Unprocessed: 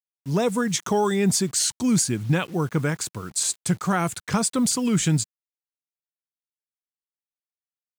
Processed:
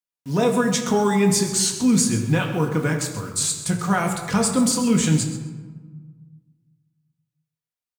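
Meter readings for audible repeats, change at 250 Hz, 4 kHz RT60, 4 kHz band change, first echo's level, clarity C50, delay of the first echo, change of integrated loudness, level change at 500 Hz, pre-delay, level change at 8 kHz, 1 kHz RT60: 1, +3.5 dB, 0.75 s, +2.0 dB, −13.0 dB, 6.0 dB, 131 ms, +2.5 dB, +3.0 dB, 4 ms, +1.5 dB, 1.4 s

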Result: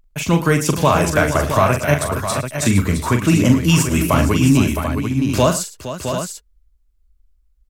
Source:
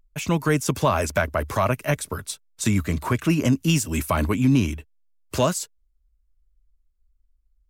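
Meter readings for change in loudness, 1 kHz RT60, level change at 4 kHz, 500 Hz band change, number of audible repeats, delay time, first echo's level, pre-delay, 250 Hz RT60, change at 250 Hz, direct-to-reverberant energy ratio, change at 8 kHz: +6.0 dB, no reverb audible, +7.0 dB, +7.0 dB, 5, 41 ms, −7.0 dB, no reverb audible, no reverb audible, +7.0 dB, no reverb audible, +7.0 dB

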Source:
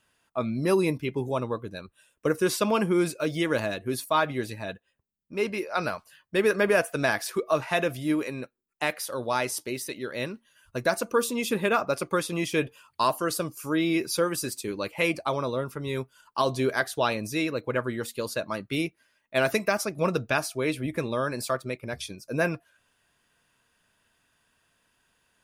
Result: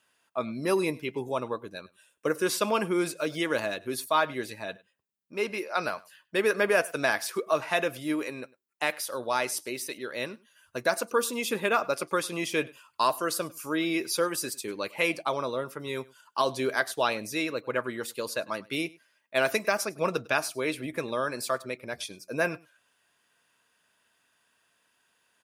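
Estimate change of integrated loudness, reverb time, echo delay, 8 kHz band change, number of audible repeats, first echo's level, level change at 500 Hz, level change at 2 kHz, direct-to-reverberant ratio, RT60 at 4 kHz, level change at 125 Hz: −1.5 dB, no reverb audible, 101 ms, 0.0 dB, 1, −23.0 dB, −2.0 dB, 0.0 dB, no reverb audible, no reverb audible, −8.5 dB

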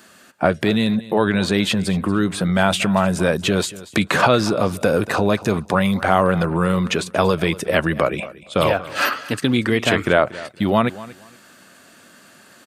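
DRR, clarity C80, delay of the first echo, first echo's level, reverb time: no reverb audible, no reverb audible, 234 ms, −18.0 dB, no reverb audible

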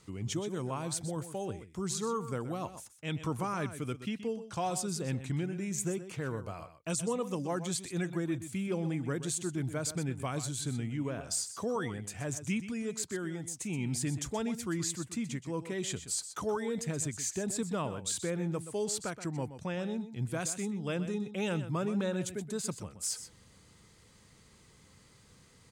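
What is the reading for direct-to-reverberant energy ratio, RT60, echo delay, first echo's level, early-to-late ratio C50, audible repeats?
no reverb audible, no reverb audible, 125 ms, −12.0 dB, no reverb audible, 1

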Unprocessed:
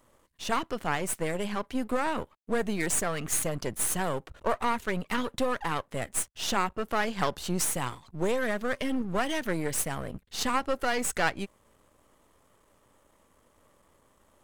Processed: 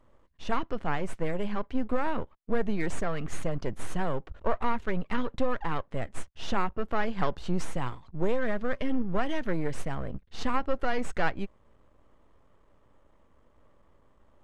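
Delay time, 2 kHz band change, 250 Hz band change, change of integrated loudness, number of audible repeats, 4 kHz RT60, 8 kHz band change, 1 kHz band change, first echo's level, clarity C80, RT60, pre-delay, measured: no echo audible, −4.0 dB, 0.0 dB, −2.5 dB, no echo audible, no reverb audible, −17.5 dB, −2.0 dB, no echo audible, no reverb audible, no reverb audible, no reverb audible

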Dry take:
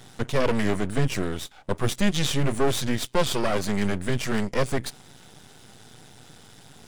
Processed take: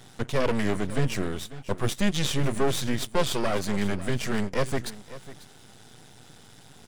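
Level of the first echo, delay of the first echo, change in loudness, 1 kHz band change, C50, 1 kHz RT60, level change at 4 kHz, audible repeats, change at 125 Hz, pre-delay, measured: −16.5 dB, 545 ms, −2.0 dB, −2.0 dB, no reverb audible, no reverb audible, −2.0 dB, 1, −2.0 dB, no reverb audible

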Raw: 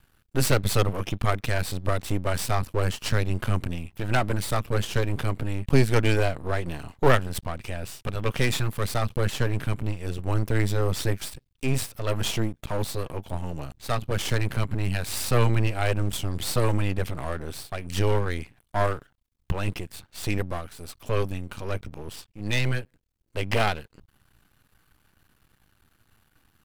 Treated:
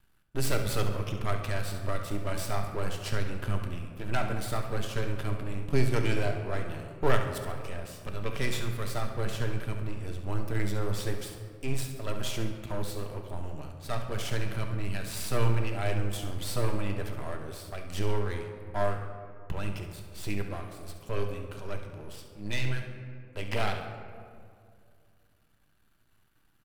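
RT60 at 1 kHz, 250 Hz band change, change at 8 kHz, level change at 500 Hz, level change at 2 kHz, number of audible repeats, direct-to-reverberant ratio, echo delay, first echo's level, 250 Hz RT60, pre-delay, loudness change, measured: 2.0 s, −6.0 dB, −7.0 dB, −6.0 dB, −6.5 dB, 1, 3.0 dB, 69 ms, −11.0 dB, 2.7 s, 3 ms, −6.5 dB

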